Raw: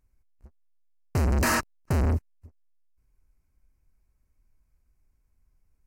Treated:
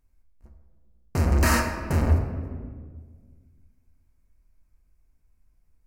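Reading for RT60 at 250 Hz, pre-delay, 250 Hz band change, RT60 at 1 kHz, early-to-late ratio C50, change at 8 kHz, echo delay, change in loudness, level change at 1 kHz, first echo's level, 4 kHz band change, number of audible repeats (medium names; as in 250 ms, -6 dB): 2.1 s, 3 ms, +3.0 dB, 1.5 s, 5.5 dB, +1.0 dB, no echo, +2.0 dB, +2.0 dB, no echo, +1.5 dB, no echo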